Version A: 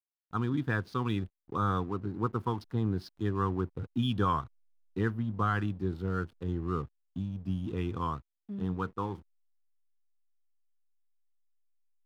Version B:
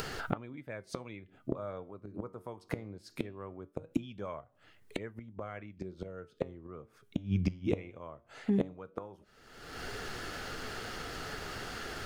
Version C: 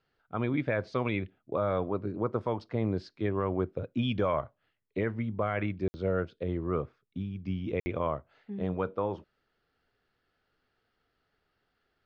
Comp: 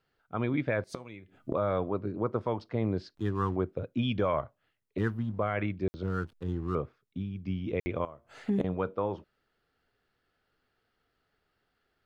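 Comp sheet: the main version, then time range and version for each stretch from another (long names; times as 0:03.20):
C
0:00.84–0:01.54: punch in from B
0:03.15–0:03.56: punch in from A
0:04.98–0:05.39: punch in from A
0:06.03–0:06.75: punch in from A
0:08.05–0:08.64: punch in from B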